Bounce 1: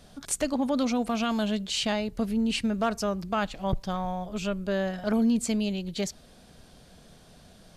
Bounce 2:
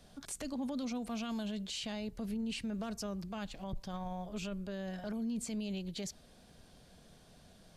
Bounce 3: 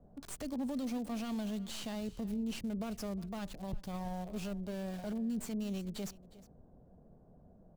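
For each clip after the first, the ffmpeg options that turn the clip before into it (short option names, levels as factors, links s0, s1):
-filter_complex "[0:a]bandreject=f=1300:w=22,acrossover=split=320|3000[s0][s1][s2];[s1]acompressor=threshold=0.0251:ratio=6[s3];[s0][s3][s2]amix=inputs=3:normalize=0,alimiter=level_in=1.12:limit=0.0631:level=0:latency=1:release=25,volume=0.891,volume=0.473"
-filter_complex "[0:a]acrossover=split=890[s0][s1];[s1]acrusher=bits=6:dc=4:mix=0:aa=0.000001[s2];[s0][s2]amix=inputs=2:normalize=0,aecho=1:1:360:0.112,volume=1.12"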